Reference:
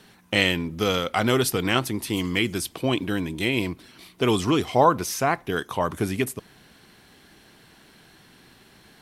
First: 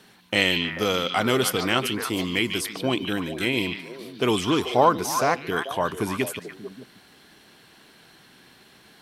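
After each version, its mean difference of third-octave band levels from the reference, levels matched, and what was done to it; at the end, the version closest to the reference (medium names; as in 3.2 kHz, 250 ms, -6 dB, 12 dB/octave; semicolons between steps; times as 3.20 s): 3.0 dB: bass shelf 98 Hz -10.5 dB; on a send: repeats whose band climbs or falls 146 ms, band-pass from 3.5 kHz, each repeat -1.4 oct, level -2.5 dB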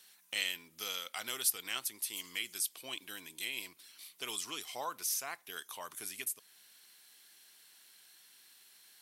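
11.0 dB: differentiator; in parallel at -3 dB: compression, threshold -44 dBFS, peak gain reduction 21 dB; on the sum: trim -5 dB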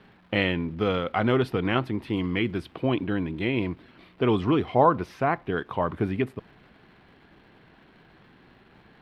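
6.0 dB: crackle 570 per s -40 dBFS; distance through air 430 m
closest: first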